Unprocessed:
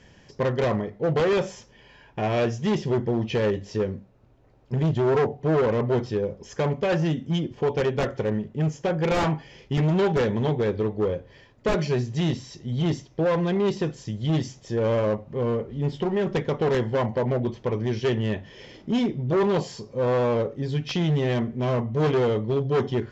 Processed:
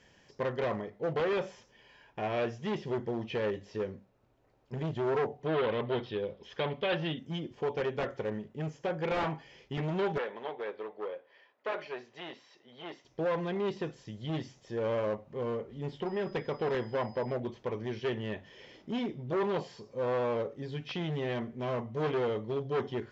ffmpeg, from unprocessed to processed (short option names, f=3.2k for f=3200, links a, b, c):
-filter_complex "[0:a]asettb=1/sr,asplit=3[a][b][c];[a]atrim=end=5.464[d];[b]atrim=start=5.46:end=7.19,asetpts=PTS-STARTPTS,afade=t=in:d=0.004:c=qsin,afade=t=out:st=1.726:d=0.004:c=qsin,lowpass=f=3.5k:t=q:w=4.2[e];[c]atrim=start=7.186[f];[d][e]acrossfade=d=0.004:c1=hsin:c2=qsin[g];[g][f]acrossfade=d=0.004:c1=qsin:c2=hsin,asettb=1/sr,asplit=3[h][i][j];[h]atrim=end=10.184[k];[i]atrim=start=10.18:end=13.05,asetpts=PTS-STARTPTS,afade=t=in:d=0.004:c=qsin,afade=t=out:st=2.866:d=0.004:c=qsin,highpass=550,lowpass=3k[l];[j]atrim=start=13.046[m];[k][l]acrossfade=d=0.004:c1=hsin:c2=qsin[n];[n][m]acrossfade=d=0.004:c1=qsin:c2=hsin,asettb=1/sr,asplit=3[o][p][q];[o]atrim=end=16.064[r];[p]atrim=start=16.06:end=17.35,asetpts=PTS-STARTPTS,afade=t=in:d=0.004:c=qsin,afade=t=out:st=1.286:d=0.004:c=qsin,aeval=exprs='val(0)+0.00251*sin(2*PI*5000*n/s)':c=same[s];[q]atrim=start=17.346[t];[r][s]acrossfade=d=0.004:c1=hsin:c2=qsin[u];[u][t]acrossfade=d=0.004:c1=qsin:c2=hsin,acrossover=split=4100[v][w];[w]acompressor=threshold=-59dB:ratio=4:attack=1:release=60[x];[v][x]amix=inputs=2:normalize=0,lowshelf=f=250:g=-9.5,volume=-6dB"